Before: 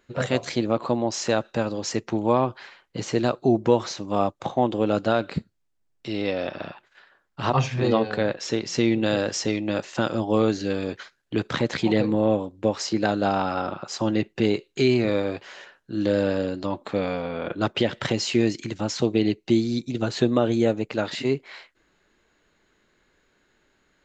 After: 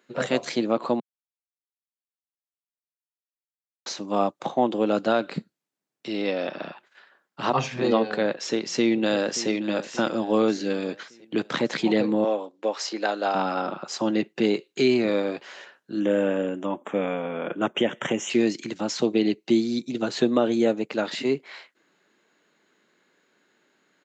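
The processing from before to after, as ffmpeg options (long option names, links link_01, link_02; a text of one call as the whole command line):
ffmpeg -i in.wav -filter_complex "[0:a]asplit=2[link_01][link_02];[link_02]afade=type=in:start_time=8.73:duration=0.01,afade=type=out:start_time=9.5:duration=0.01,aecho=0:1:580|1160|1740|2320|2900:0.177828|0.088914|0.044457|0.0222285|0.0111142[link_03];[link_01][link_03]amix=inputs=2:normalize=0,asettb=1/sr,asplit=3[link_04][link_05][link_06];[link_04]atrim=end=12.244[link_07];[link_05]atrim=start=12.24:end=13.35,asetpts=PTS-STARTPTS,afade=type=in:duration=0.004:curve=qsin,afade=type=out:start_time=1.106:duration=0.004:curve=qsin,highpass=460,lowpass=7300[link_08];[link_06]atrim=start=13.346[link_09];[link_07][link_08]acrossfade=duration=0.004:curve1=hsin:curve2=qsin[link_10];[link_10][link_09]acrossfade=duration=0.004:curve1=qsin:curve2=hsin,asplit=3[link_11][link_12][link_13];[link_11]afade=type=out:start_time=15.99:duration=0.02[link_14];[link_12]asuperstop=centerf=4500:order=8:qfactor=1.9,afade=type=in:start_time=15.99:duration=0.02,afade=type=out:start_time=18.29:duration=0.02[link_15];[link_13]afade=type=in:start_time=18.29:duration=0.02[link_16];[link_14][link_15][link_16]amix=inputs=3:normalize=0,asplit=3[link_17][link_18][link_19];[link_17]atrim=end=1,asetpts=PTS-STARTPTS,afade=type=out:start_time=0.996:duration=0.004:curve=hsin[link_20];[link_18]atrim=start=1:end=3.86,asetpts=PTS-STARTPTS,volume=0[link_21];[link_19]atrim=start=3.86,asetpts=PTS-STARTPTS,afade=type=in:duration=0.004:curve=hsin[link_22];[link_20][link_21][link_22]concat=n=3:v=0:a=1,highpass=frequency=170:width=0.5412,highpass=frequency=170:width=1.3066" out.wav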